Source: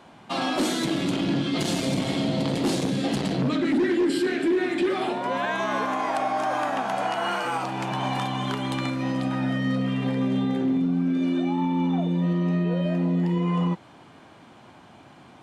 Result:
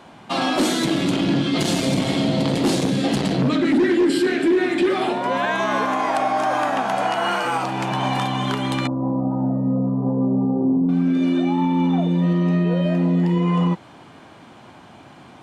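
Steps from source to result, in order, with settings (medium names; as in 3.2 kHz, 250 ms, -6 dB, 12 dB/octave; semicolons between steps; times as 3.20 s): 8.87–10.89 s: elliptic low-pass 1 kHz, stop band 60 dB; trim +5 dB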